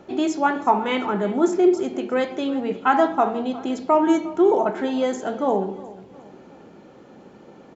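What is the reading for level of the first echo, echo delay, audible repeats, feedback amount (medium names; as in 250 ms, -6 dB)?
-19.0 dB, 356 ms, 3, 42%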